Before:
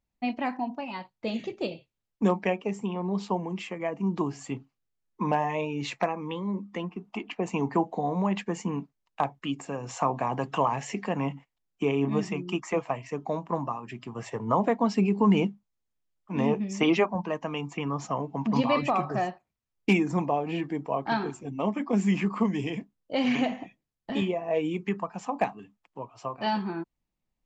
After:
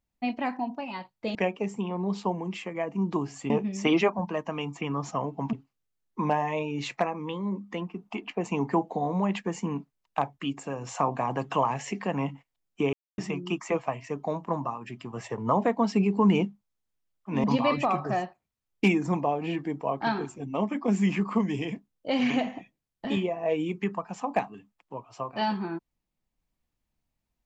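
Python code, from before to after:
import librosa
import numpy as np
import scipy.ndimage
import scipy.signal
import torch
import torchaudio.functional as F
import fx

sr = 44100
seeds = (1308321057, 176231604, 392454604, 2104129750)

y = fx.edit(x, sr, fx.cut(start_s=1.35, length_s=1.05),
    fx.silence(start_s=11.95, length_s=0.25),
    fx.move(start_s=16.46, length_s=2.03, to_s=4.55), tone=tone)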